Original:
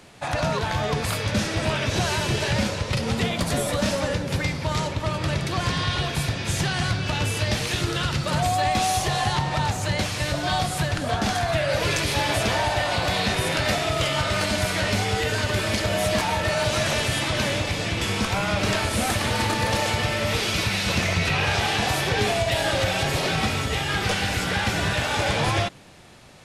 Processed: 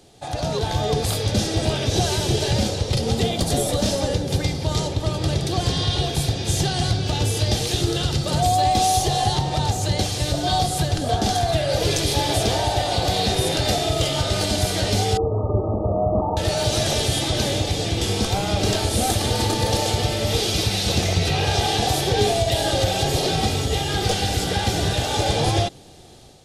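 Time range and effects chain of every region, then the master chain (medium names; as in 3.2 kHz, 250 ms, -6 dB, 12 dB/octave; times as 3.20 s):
15.17–16.37 s: brick-wall FIR low-pass 1.3 kHz + flutter echo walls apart 8 m, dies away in 0.37 s
whole clip: high-order bell 1.6 kHz -10.5 dB; comb 2.5 ms, depth 32%; level rider gain up to 5.5 dB; trim -1.5 dB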